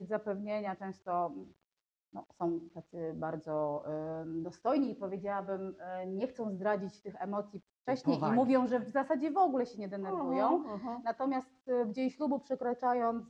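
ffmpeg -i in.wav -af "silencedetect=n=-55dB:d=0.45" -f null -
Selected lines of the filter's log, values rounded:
silence_start: 1.52
silence_end: 2.13 | silence_duration: 0.61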